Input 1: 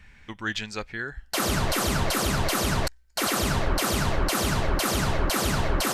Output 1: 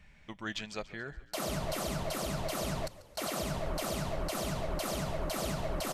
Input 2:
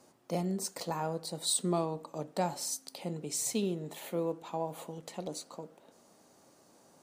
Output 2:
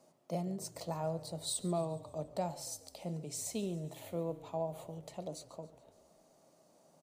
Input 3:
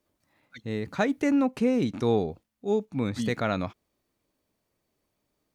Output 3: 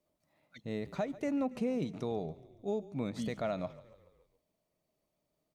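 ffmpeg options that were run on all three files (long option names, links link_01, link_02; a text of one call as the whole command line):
ffmpeg -i in.wav -filter_complex "[0:a]equalizer=frequency=100:width_type=o:width=0.33:gain=-5,equalizer=frequency=160:width_type=o:width=0.33:gain=8,equalizer=frequency=630:width_type=o:width=0.33:gain=10,equalizer=frequency=1600:width_type=o:width=0.33:gain=-5,alimiter=limit=-18dB:level=0:latency=1:release=458,asplit=6[link_01][link_02][link_03][link_04][link_05][link_06];[link_02]adelay=141,afreqshift=-31,volume=-18.5dB[link_07];[link_03]adelay=282,afreqshift=-62,volume=-23.4dB[link_08];[link_04]adelay=423,afreqshift=-93,volume=-28.3dB[link_09];[link_05]adelay=564,afreqshift=-124,volume=-33.1dB[link_10];[link_06]adelay=705,afreqshift=-155,volume=-38dB[link_11];[link_01][link_07][link_08][link_09][link_10][link_11]amix=inputs=6:normalize=0,volume=-7dB" out.wav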